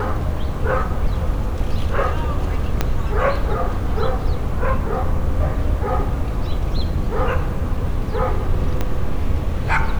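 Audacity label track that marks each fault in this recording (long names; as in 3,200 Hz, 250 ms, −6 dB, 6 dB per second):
2.810000	2.810000	click −4 dBFS
8.810000	8.810000	click −8 dBFS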